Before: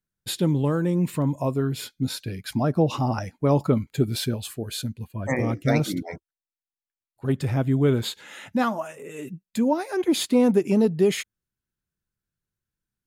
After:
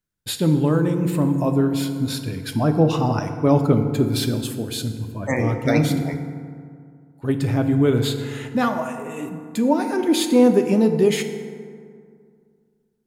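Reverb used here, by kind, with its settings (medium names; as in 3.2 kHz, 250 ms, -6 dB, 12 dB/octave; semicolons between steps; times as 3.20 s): FDN reverb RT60 2.2 s, low-frequency decay 1.1×, high-frequency decay 0.45×, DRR 6 dB; trim +2.5 dB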